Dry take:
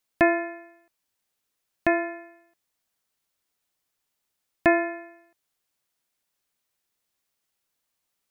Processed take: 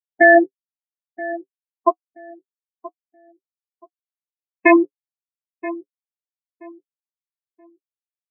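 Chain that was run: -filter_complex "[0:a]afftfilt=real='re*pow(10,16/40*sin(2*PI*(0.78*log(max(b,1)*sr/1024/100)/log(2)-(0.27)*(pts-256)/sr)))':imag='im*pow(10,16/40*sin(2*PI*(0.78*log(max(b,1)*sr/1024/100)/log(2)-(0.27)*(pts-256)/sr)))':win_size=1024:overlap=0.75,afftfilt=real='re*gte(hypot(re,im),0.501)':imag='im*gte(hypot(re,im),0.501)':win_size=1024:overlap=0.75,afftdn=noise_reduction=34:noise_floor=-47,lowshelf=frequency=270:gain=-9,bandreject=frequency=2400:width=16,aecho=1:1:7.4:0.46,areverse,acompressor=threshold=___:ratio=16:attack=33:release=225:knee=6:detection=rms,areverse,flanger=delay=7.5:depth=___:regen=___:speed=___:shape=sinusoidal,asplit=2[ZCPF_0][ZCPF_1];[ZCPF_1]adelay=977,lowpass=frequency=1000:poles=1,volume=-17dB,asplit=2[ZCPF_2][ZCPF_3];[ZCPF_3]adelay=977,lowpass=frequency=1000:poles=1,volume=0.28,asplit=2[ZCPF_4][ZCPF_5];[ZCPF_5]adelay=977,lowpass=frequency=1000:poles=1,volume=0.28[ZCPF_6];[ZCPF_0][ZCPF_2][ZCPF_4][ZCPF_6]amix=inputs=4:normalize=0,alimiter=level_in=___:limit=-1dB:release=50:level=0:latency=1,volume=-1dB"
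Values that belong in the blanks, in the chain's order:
-28dB, 1.5, -36, 0.95, 26dB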